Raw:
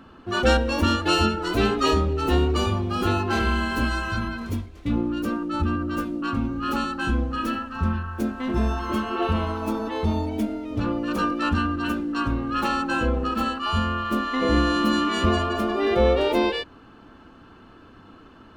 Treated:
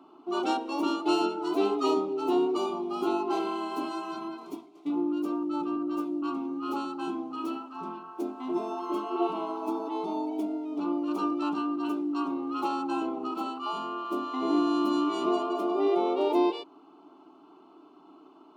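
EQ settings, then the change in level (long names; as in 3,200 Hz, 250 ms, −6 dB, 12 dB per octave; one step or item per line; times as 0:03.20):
Butterworth high-pass 230 Hz 36 dB per octave
high-shelf EQ 2,500 Hz −12 dB
phaser with its sweep stopped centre 340 Hz, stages 8
0.0 dB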